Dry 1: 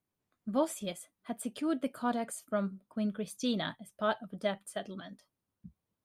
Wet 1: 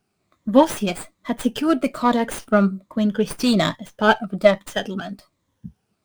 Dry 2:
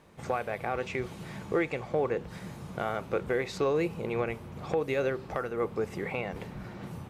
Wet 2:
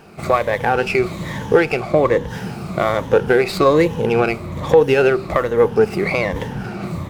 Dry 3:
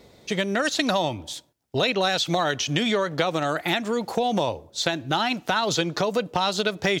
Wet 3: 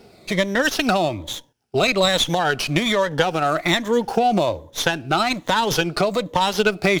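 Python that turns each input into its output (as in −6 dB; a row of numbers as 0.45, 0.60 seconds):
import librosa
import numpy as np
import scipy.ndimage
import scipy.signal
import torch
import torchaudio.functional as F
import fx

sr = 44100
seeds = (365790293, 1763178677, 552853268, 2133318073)

y = fx.spec_ripple(x, sr, per_octave=1.1, drift_hz=-1.2, depth_db=11)
y = fx.running_max(y, sr, window=3)
y = y * 10.0 ** (-1.5 / 20.0) / np.max(np.abs(y))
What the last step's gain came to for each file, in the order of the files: +14.5, +13.5, +3.0 decibels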